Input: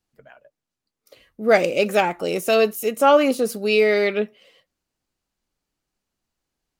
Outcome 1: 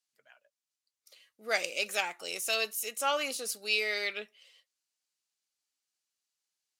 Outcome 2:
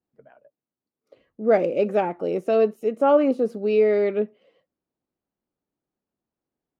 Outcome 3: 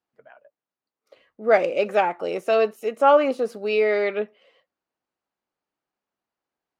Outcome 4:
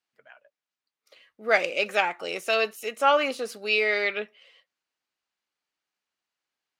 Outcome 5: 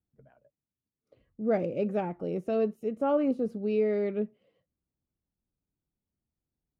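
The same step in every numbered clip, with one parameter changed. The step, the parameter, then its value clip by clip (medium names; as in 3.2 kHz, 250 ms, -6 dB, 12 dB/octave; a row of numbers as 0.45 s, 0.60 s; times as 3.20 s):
band-pass filter, frequency: 6.8 kHz, 330 Hz, 860 Hz, 2.2 kHz, 100 Hz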